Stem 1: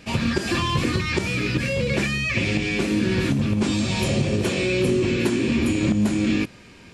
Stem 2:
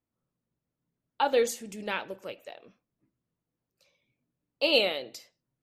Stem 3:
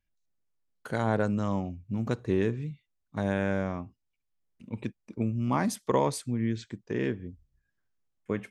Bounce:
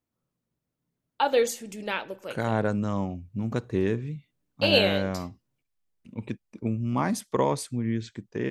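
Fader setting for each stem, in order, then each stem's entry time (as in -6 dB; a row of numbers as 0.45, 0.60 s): off, +2.0 dB, +1.0 dB; off, 0.00 s, 1.45 s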